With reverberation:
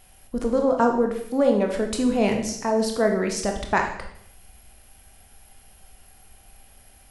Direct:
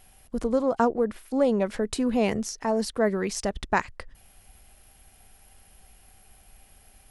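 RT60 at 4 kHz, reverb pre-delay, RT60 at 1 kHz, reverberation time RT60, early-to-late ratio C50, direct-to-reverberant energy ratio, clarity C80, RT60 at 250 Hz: 0.65 s, 20 ms, 0.65 s, 0.70 s, 6.5 dB, 3.0 dB, 10.5 dB, 0.80 s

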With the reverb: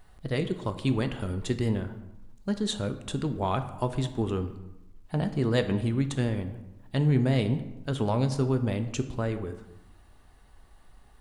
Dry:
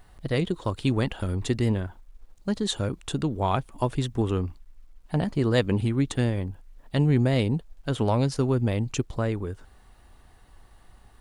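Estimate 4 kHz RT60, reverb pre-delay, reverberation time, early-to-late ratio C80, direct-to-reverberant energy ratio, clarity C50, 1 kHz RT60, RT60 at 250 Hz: 0.60 s, 5 ms, 0.90 s, 13.5 dB, 8.5 dB, 11.5 dB, 0.95 s, 1.0 s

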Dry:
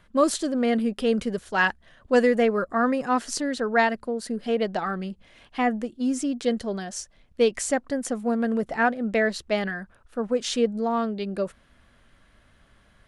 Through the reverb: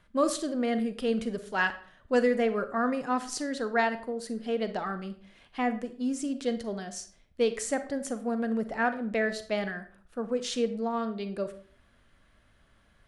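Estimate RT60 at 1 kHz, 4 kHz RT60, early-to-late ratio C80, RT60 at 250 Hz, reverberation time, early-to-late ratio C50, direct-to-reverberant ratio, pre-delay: 0.45 s, 0.35 s, 16.5 dB, 0.55 s, 0.50 s, 13.0 dB, 10.5 dB, 36 ms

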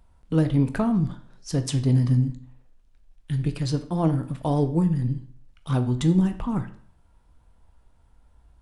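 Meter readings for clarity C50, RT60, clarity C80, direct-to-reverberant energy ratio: 13.0 dB, 0.55 s, 17.0 dB, 8.0 dB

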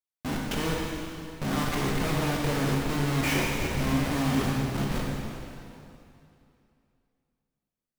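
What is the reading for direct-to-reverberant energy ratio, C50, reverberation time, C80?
-3.5 dB, -1.0 dB, 2.7 s, 0.0 dB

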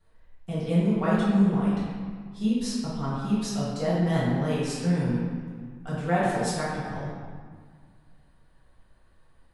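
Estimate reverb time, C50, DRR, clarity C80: 1.8 s, -2.5 dB, -11.0 dB, 0.0 dB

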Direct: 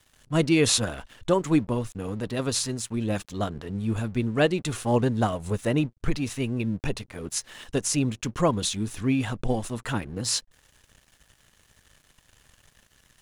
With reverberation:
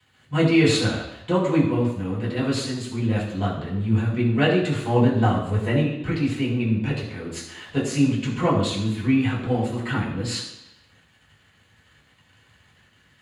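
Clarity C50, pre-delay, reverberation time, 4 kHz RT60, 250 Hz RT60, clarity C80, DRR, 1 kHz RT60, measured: 5.0 dB, 3 ms, 0.85 s, 0.90 s, 0.85 s, 7.0 dB, -8.5 dB, 0.85 s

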